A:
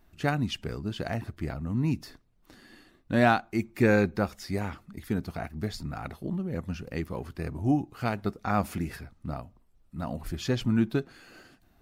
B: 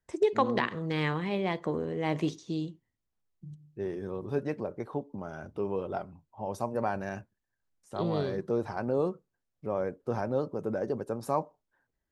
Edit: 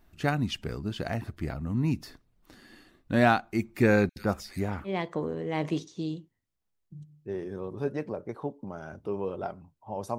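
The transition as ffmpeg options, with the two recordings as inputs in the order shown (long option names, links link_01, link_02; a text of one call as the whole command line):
ffmpeg -i cue0.wav -i cue1.wav -filter_complex "[0:a]asettb=1/sr,asplit=3[link_01][link_02][link_03];[link_01]atrim=end=4.094[link_04];[link_02]atrim=start=4.09:end=4.9,asetpts=PTS-STARTPTS,afade=type=in:duration=0.004:curve=qsin,afade=type=out:start_time=0.806:duration=0.004:curve=qsin,acrossover=split=2400[link_05][link_06];[link_05]adelay=70[link_07];[link_07][link_06]amix=inputs=2:normalize=0,atrim=end_sample=35721[link_08];[link_03]atrim=start=4.896[link_09];[link_04][link_08]acrossfade=duration=0.004:curve1=hsin:curve2=qsin[link_10];[link_10][link_09]acrossfade=duration=0.004:curve1=qsin:curve2=hsin,apad=whole_dur=10.18,atrim=end=10.18,atrim=end=4.9,asetpts=PTS-STARTPTS[link_11];[1:a]atrim=start=1.35:end=6.69,asetpts=PTS-STARTPTS[link_12];[link_11][link_12]acrossfade=duration=0.06:curve1=tri:curve2=tri" out.wav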